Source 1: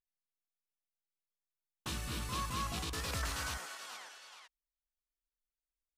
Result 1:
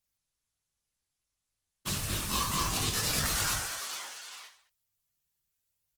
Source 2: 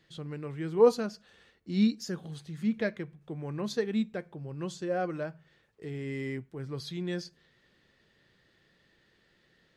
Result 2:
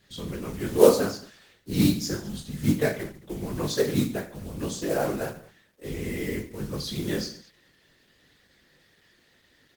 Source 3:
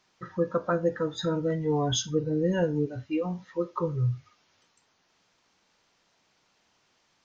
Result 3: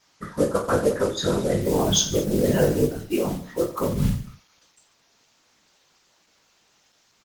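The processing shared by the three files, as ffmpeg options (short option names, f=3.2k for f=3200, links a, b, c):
-filter_complex "[0:a]acrusher=bits=5:mode=log:mix=0:aa=0.000001,afftfilt=real='hypot(re,im)*cos(2*PI*random(0))':imag='hypot(re,im)*sin(2*PI*random(1))':win_size=512:overlap=0.75,highshelf=f=4.6k:g=10,asplit=2[a][b];[b]aecho=0:1:20|48|87.2|142.1|218.9:0.631|0.398|0.251|0.158|0.1[c];[a][c]amix=inputs=2:normalize=0,volume=9dB" -ar 48000 -c:a libopus -b:a 16k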